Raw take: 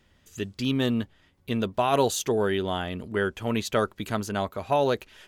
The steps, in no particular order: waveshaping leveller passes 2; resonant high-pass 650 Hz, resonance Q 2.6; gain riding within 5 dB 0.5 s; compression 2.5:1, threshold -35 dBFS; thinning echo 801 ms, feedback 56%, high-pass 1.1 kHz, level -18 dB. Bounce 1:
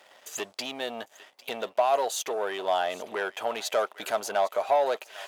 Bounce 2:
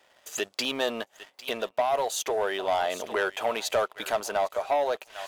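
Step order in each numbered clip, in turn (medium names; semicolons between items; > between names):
compression > gain riding > thinning echo > waveshaping leveller > resonant high-pass; thinning echo > compression > resonant high-pass > gain riding > waveshaping leveller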